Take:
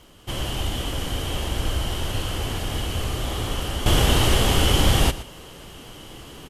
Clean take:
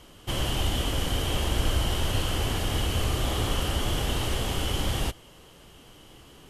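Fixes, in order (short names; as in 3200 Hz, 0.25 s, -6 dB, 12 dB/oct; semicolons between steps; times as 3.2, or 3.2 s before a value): de-click; inverse comb 0.119 s -15.5 dB; gain 0 dB, from 3.86 s -9.5 dB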